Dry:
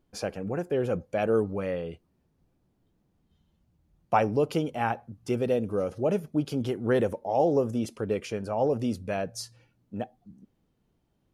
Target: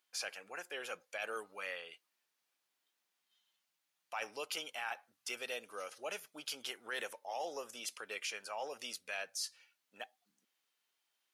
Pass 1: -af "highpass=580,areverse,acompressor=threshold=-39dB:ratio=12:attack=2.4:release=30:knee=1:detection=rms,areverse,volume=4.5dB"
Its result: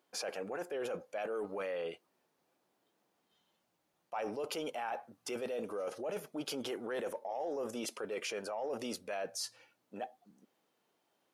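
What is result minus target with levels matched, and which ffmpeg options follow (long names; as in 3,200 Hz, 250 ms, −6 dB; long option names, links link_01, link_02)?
2,000 Hz band −7.0 dB
-af "highpass=1900,areverse,acompressor=threshold=-39dB:ratio=12:attack=2.4:release=30:knee=1:detection=rms,areverse,volume=4.5dB"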